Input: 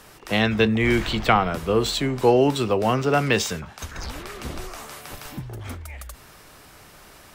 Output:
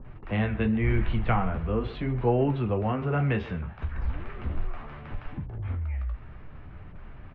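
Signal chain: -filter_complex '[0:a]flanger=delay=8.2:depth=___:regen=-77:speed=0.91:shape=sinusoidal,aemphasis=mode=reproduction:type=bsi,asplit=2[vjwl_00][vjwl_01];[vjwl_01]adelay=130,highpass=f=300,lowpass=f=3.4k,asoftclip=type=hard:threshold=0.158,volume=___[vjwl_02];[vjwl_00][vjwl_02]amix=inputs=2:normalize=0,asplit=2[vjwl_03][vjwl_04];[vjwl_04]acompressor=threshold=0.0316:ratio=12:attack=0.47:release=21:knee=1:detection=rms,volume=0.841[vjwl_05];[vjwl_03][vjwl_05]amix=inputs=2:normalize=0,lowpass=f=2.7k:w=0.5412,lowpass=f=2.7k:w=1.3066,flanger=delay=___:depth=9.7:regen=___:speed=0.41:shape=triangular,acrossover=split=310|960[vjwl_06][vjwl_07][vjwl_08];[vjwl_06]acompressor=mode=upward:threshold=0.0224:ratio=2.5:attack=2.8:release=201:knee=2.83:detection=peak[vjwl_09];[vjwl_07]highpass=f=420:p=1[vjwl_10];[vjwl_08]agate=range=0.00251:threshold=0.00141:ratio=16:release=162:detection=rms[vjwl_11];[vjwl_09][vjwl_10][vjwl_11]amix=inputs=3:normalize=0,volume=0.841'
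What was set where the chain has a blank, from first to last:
5.5, 0.126, 7.4, -42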